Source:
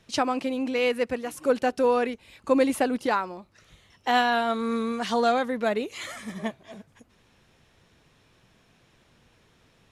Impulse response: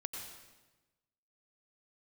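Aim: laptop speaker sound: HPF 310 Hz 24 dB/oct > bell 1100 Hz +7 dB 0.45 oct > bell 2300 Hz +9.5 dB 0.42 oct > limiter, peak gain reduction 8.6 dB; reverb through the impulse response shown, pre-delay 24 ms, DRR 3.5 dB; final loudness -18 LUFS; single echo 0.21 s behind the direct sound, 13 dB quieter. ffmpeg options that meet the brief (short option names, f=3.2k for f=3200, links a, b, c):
-filter_complex "[0:a]aecho=1:1:210:0.224,asplit=2[a][b];[1:a]atrim=start_sample=2205,adelay=24[c];[b][c]afir=irnorm=-1:irlink=0,volume=-3dB[d];[a][d]amix=inputs=2:normalize=0,highpass=f=310:w=0.5412,highpass=f=310:w=1.3066,equalizer=f=1.1k:t=o:w=0.45:g=7,equalizer=f=2.3k:t=o:w=0.42:g=9.5,volume=8.5dB,alimiter=limit=-7.5dB:level=0:latency=1"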